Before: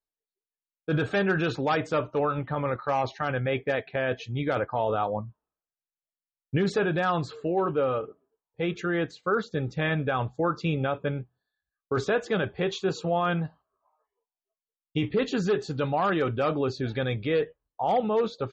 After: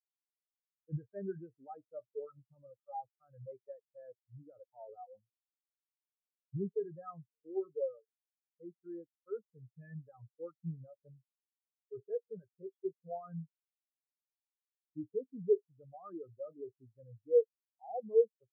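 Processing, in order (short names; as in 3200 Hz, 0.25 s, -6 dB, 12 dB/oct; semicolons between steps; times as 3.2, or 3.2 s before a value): spectral expander 4:1; gain -1.5 dB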